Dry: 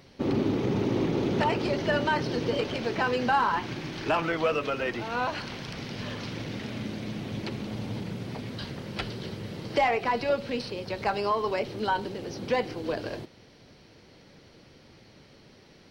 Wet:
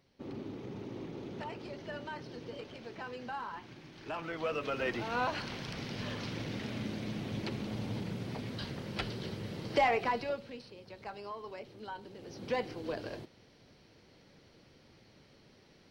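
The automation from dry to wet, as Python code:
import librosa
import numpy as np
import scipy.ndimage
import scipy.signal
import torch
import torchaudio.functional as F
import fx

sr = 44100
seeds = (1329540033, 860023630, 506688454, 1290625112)

y = fx.gain(x, sr, db=fx.line((3.94, -16.5), (4.87, -3.5), (10.03, -3.5), (10.6, -16.5), (12.0, -16.5), (12.5, -7.0)))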